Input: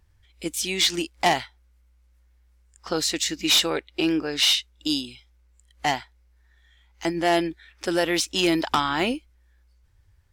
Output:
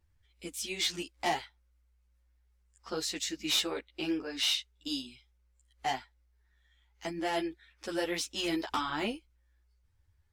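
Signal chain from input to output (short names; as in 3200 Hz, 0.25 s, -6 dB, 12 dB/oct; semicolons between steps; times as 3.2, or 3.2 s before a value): ensemble effect; gain -7 dB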